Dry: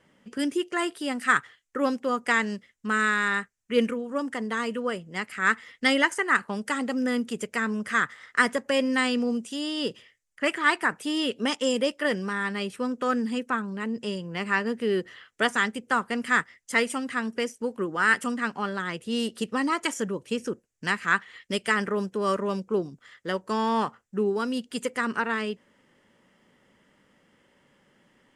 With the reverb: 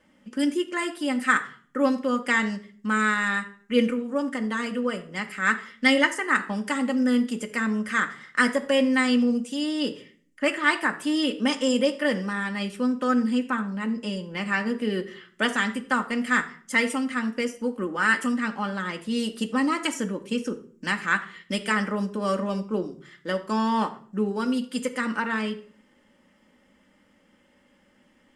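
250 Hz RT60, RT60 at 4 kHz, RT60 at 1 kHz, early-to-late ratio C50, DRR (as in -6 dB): 0.70 s, 0.40 s, 0.45 s, 14.0 dB, 3.5 dB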